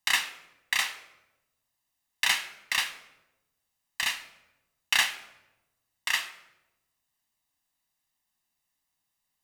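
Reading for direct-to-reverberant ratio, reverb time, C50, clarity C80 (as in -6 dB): 9.5 dB, 1.0 s, 12.5 dB, 15.0 dB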